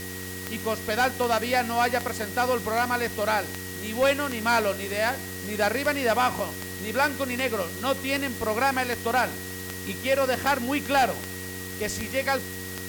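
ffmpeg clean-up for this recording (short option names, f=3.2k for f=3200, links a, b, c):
-af "adeclick=t=4,bandreject=f=92.8:t=h:w=4,bandreject=f=185.6:t=h:w=4,bandreject=f=278.4:t=h:w=4,bandreject=f=371.2:t=h:w=4,bandreject=f=464:t=h:w=4,bandreject=f=1.9k:w=30,afwtdn=0.011"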